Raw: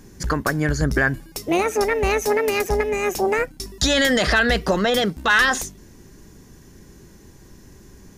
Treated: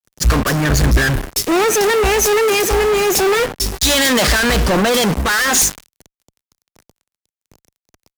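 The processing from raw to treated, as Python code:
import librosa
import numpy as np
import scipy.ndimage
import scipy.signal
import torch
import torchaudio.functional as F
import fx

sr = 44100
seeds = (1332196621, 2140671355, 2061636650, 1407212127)

y = fx.echo_wet_lowpass(x, sr, ms=87, feedback_pct=64, hz=1200.0, wet_db=-24.0)
y = fx.fuzz(y, sr, gain_db=46.0, gate_db=-37.0)
y = fx.band_widen(y, sr, depth_pct=100)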